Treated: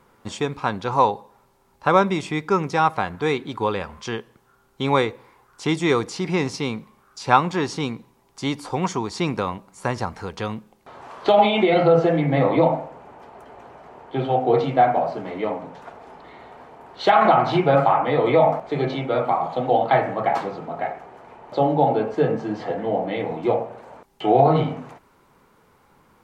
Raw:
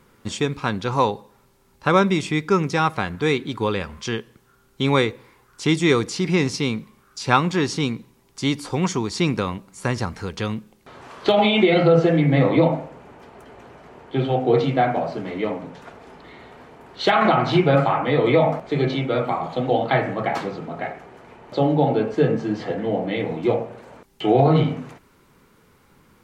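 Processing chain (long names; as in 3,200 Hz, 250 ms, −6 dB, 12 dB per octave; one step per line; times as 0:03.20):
parametric band 810 Hz +9 dB 1.4 octaves
level −4.5 dB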